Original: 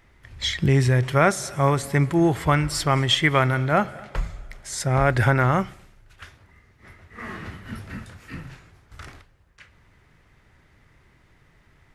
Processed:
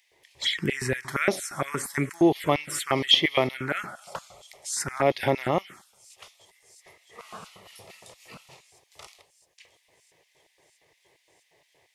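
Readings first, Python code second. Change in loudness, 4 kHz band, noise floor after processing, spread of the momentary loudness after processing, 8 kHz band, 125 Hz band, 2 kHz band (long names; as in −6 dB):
−4.0 dB, +2.0 dB, −69 dBFS, 21 LU, −1.0 dB, −14.5 dB, −4.5 dB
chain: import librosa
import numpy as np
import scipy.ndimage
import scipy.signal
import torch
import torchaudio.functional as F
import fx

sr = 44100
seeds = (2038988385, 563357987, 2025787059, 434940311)

y = fx.filter_lfo_highpass(x, sr, shape='square', hz=4.3, low_hz=310.0, high_hz=2400.0, q=0.84)
y = fx.echo_wet_highpass(y, sr, ms=661, feedback_pct=78, hz=5500.0, wet_db=-22.5)
y = fx.env_phaser(y, sr, low_hz=230.0, high_hz=1500.0, full_db=-20.5)
y = F.gain(torch.from_numpy(y), 3.0).numpy()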